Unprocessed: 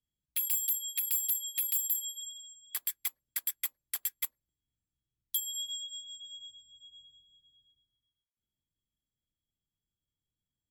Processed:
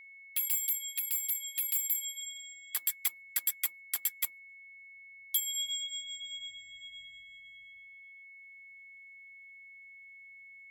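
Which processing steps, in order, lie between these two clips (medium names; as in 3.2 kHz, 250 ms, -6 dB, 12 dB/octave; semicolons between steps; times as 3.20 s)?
gain riding within 5 dB 2 s; whistle 2.2 kHz -50 dBFS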